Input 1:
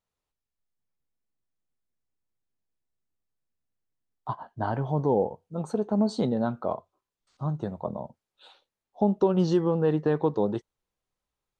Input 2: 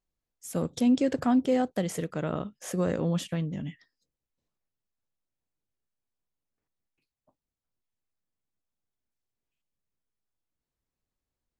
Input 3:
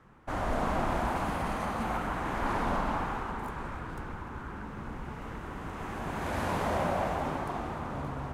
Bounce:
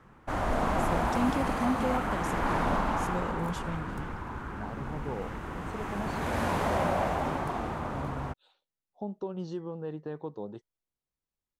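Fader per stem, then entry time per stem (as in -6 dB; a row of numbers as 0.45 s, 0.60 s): -13.5 dB, -7.0 dB, +2.0 dB; 0.00 s, 0.35 s, 0.00 s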